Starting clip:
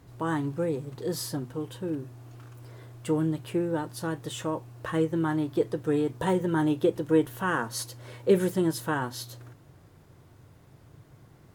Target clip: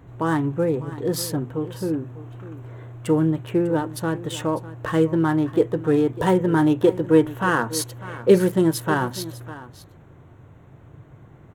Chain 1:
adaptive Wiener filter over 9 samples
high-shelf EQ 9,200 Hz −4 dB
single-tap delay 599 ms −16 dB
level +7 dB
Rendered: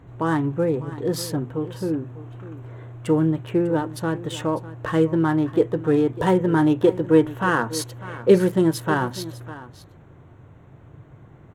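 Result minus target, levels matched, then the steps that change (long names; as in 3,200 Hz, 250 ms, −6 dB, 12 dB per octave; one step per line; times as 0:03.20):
8,000 Hz band −3.0 dB
change: high-shelf EQ 9,200 Hz +3.5 dB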